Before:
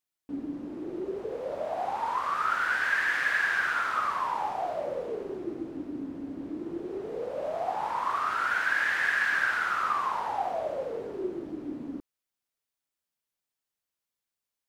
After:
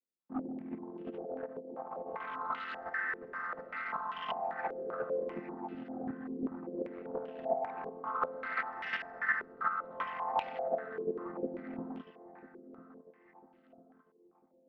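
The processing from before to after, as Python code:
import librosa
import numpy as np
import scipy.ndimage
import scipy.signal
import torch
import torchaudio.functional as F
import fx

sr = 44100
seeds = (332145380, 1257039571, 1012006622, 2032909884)

y = fx.chord_vocoder(x, sr, chord='major triad', root=53)
y = fx.over_compress(y, sr, threshold_db=-34.0, ratio=-0.5, at=(1.01, 2.26))
y = np.clip(10.0 ** (28.5 / 20.0) * y, -1.0, 1.0) / 10.0 ** (28.5 / 20.0)
y = fx.chopper(y, sr, hz=2.8, depth_pct=60, duty_pct=10)
y = fx.echo_feedback(y, sr, ms=998, feedback_pct=41, wet_db=-14)
y = fx.filter_held_lowpass(y, sr, hz=5.1, low_hz=410.0, high_hz=2900.0)
y = y * librosa.db_to_amplitude(-3.0)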